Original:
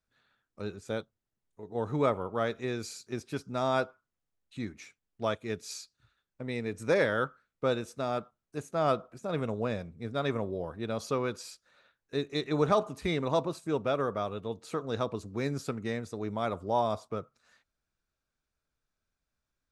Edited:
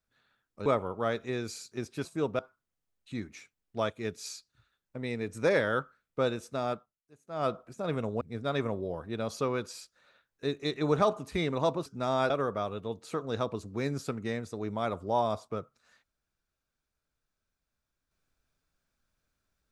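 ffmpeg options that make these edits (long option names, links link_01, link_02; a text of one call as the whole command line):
ffmpeg -i in.wav -filter_complex "[0:a]asplit=9[link_01][link_02][link_03][link_04][link_05][link_06][link_07][link_08][link_09];[link_01]atrim=end=0.662[link_10];[link_02]atrim=start=2.008:end=3.402[link_11];[link_03]atrim=start=13.558:end=13.902[link_12];[link_04]atrim=start=3.838:end=8.53,asetpts=PTS-STARTPTS,afade=type=out:start_time=4.332:duration=0.36:curve=qua:silence=0.0841395[link_13];[link_05]atrim=start=8.53:end=8.6,asetpts=PTS-STARTPTS,volume=-21.5dB[link_14];[link_06]atrim=start=8.6:end=9.662,asetpts=PTS-STARTPTS,afade=type=in:duration=0.36:curve=qua:silence=0.0841395[link_15];[link_07]atrim=start=9.908:end=13.562[link_16];[link_08]atrim=start=3.398:end=3.842[link_17];[link_09]atrim=start=13.898[link_18];[link_10][link_11]acrossfade=duration=0.004:curve1=hsin:curve2=hsin[link_19];[link_19][link_12]acrossfade=duration=0.004:curve1=hsin:curve2=hsin[link_20];[link_13][link_14][link_15]concat=n=3:v=0:a=1[link_21];[link_20][link_21]acrossfade=duration=0.004:curve1=hsin:curve2=hsin[link_22];[link_22][link_16]acrossfade=duration=0.004:curve1=hsin:curve2=hsin[link_23];[link_23][link_17]acrossfade=duration=0.004:curve1=hsin:curve2=hsin[link_24];[link_24][link_18]acrossfade=duration=0.004:curve1=hsin:curve2=hsin" out.wav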